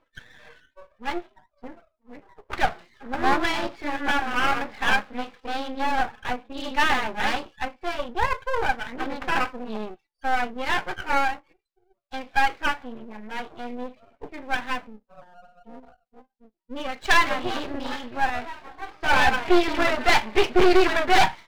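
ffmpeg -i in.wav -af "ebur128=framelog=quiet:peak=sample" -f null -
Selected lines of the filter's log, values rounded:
Integrated loudness:
  I:         -24.8 LUFS
  Threshold: -36.1 LUFS
Loudness range:
  LRA:        10.0 LU
  Threshold: -46.8 LUFS
  LRA low:   -33.1 LUFS
  LRA high:  -23.1 LUFS
Sample peak:
  Peak:       -7.4 dBFS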